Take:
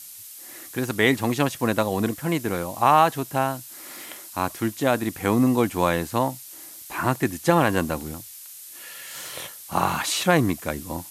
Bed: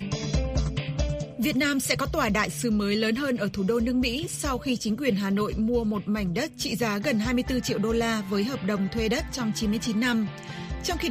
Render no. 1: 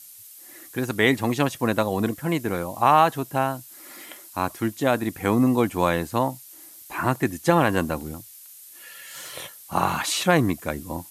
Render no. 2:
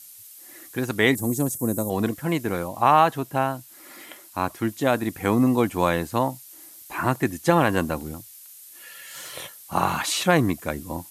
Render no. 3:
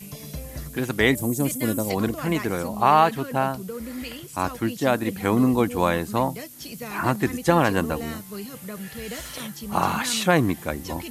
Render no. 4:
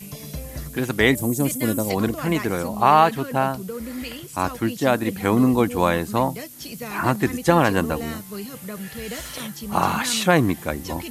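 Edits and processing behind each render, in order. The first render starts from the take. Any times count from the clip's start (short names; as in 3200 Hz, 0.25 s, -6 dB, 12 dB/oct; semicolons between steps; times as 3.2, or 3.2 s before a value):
denoiser 6 dB, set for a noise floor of -42 dBFS
1.15–1.9 EQ curve 330 Hz 0 dB, 2900 Hz -24 dB, 8000 Hz +10 dB; 2.68–4.68 tone controls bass 0 dB, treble -3 dB
add bed -9.5 dB
gain +2 dB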